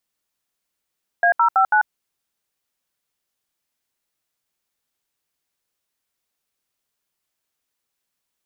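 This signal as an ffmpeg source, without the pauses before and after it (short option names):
-f lavfi -i "aevalsrc='0.178*clip(min(mod(t,0.164),0.092-mod(t,0.164))/0.002,0,1)*(eq(floor(t/0.164),0)*(sin(2*PI*697*mod(t,0.164))+sin(2*PI*1633*mod(t,0.164)))+eq(floor(t/0.164),1)*(sin(2*PI*941*mod(t,0.164))+sin(2*PI*1336*mod(t,0.164)))+eq(floor(t/0.164),2)*(sin(2*PI*770*mod(t,0.164))+sin(2*PI*1336*mod(t,0.164)))+eq(floor(t/0.164),3)*(sin(2*PI*852*mod(t,0.164))+sin(2*PI*1477*mod(t,0.164))))':d=0.656:s=44100"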